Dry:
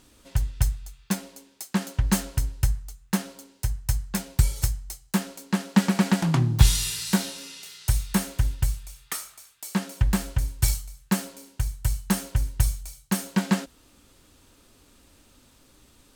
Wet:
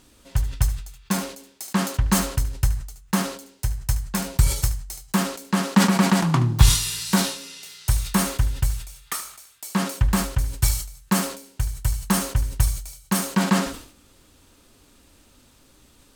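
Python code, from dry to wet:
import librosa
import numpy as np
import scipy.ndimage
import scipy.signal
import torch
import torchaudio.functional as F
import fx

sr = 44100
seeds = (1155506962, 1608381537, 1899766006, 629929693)

p1 = fx.dynamic_eq(x, sr, hz=1100.0, q=2.8, threshold_db=-49.0, ratio=4.0, max_db=7)
p2 = p1 + fx.echo_single(p1, sr, ms=74, db=-14.0, dry=0)
p3 = fx.sustainer(p2, sr, db_per_s=98.0)
y = F.gain(torch.from_numpy(p3), 1.5).numpy()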